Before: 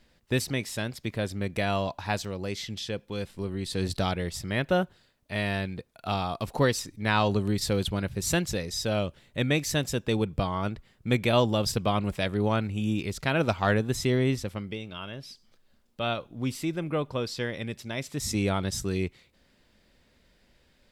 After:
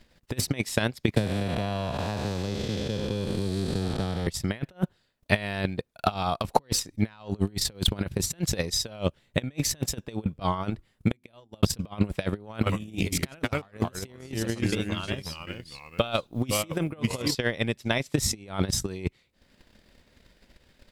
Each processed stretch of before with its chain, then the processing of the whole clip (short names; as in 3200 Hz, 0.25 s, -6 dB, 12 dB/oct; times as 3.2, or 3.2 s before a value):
1.16–4.27 time blur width 0.497 s + bell 2200 Hz -4 dB 0.6 oct + three-band squash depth 100%
10.7–11.63 notches 50/100/150/200/250/300/350 Hz + flipped gate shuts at -19 dBFS, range -33 dB + bell 10000 Hz +5.5 dB 0.61 oct
12.54–17.35 high shelf 8000 Hz +10.5 dB + echoes that change speed 90 ms, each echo -2 st, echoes 2, each echo -6 dB
whole clip: negative-ratio compressor -31 dBFS, ratio -0.5; transient shaper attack +12 dB, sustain -10 dB; de-esser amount 40%